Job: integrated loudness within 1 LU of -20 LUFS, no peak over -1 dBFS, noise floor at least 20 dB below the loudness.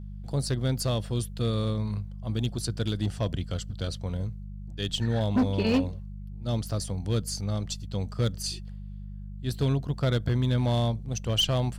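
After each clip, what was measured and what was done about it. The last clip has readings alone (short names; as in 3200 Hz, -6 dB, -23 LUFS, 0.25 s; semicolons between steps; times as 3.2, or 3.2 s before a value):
clipped 0.7%; flat tops at -18.5 dBFS; hum 50 Hz; harmonics up to 200 Hz; hum level -36 dBFS; loudness -29.0 LUFS; peak -18.5 dBFS; loudness target -20.0 LUFS
-> clip repair -18.5 dBFS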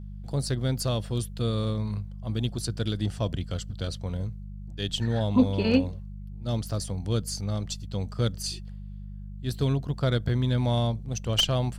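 clipped 0.0%; hum 50 Hz; harmonics up to 200 Hz; hum level -36 dBFS
-> de-hum 50 Hz, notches 4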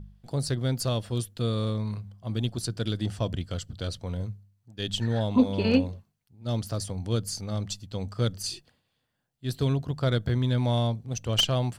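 hum none; loudness -29.0 LUFS; peak -9.0 dBFS; loudness target -20.0 LUFS
-> gain +9 dB; limiter -1 dBFS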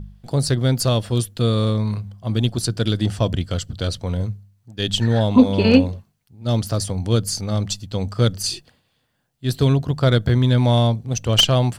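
loudness -20.0 LUFS; peak -1.0 dBFS; noise floor -68 dBFS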